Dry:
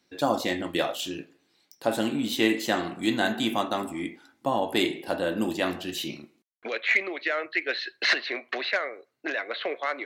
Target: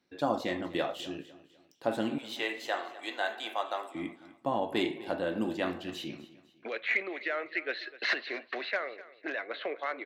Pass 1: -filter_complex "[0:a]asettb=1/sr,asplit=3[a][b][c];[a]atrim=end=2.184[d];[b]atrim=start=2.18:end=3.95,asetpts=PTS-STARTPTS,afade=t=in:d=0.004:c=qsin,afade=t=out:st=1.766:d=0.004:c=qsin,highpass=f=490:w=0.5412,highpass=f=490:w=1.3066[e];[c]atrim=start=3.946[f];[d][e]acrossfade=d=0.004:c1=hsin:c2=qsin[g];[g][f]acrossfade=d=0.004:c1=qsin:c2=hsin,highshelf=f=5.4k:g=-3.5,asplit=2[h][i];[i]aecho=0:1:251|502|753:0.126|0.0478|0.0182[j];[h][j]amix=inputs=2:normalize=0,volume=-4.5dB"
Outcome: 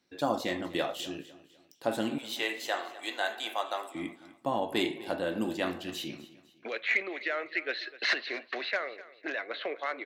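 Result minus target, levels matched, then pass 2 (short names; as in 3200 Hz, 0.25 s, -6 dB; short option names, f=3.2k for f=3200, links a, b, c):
8000 Hz band +5.5 dB
-filter_complex "[0:a]asettb=1/sr,asplit=3[a][b][c];[a]atrim=end=2.184[d];[b]atrim=start=2.18:end=3.95,asetpts=PTS-STARTPTS,afade=t=in:d=0.004:c=qsin,afade=t=out:st=1.766:d=0.004:c=qsin,highpass=f=490:w=0.5412,highpass=f=490:w=1.3066[e];[c]atrim=start=3.946[f];[d][e]acrossfade=d=0.004:c1=hsin:c2=qsin[g];[g][f]acrossfade=d=0.004:c1=qsin:c2=hsin,highshelf=f=5.4k:g=-14,asplit=2[h][i];[i]aecho=0:1:251|502|753:0.126|0.0478|0.0182[j];[h][j]amix=inputs=2:normalize=0,volume=-4.5dB"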